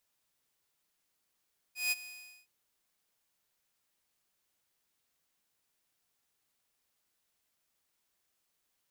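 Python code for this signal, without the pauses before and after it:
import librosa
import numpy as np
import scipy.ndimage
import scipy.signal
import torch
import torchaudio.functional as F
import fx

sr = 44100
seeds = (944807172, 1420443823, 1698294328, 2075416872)

y = fx.adsr_tone(sr, wave='saw', hz=2490.0, attack_ms=166.0, decay_ms=29.0, sustain_db=-17.5, held_s=0.3, release_ms=418.0, level_db=-24.5)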